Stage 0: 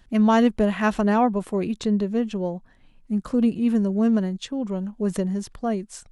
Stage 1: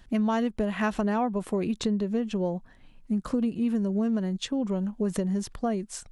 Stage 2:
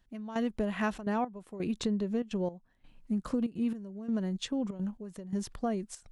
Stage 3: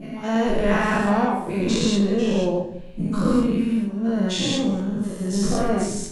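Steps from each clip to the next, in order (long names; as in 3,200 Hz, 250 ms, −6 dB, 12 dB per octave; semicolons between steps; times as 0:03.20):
downward compressor 6 to 1, threshold −25 dBFS, peak gain reduction 11.5 dB; level +1.5 dB
gate pattern "....xxxxxxx.xx" 169 BPM −12 dB; level −4 dB
every bin's largest magnitude spread in time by 240 ms; tuned comb filter 77 Hz, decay 1.6 s, harmonics all, mix 40%; convolution reverb RT60 0.60 s, pre-delay 6 ms, DRR 1 dB; level +7.5 dB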